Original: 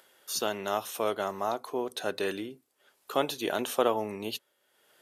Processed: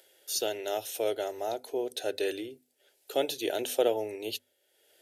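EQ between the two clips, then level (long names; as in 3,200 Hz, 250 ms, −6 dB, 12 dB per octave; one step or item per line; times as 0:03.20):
mains-hum notches 50/100/150/200/250 Hz
phaser with its sweep stopped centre 460 Hz, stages 4
+1.5 dB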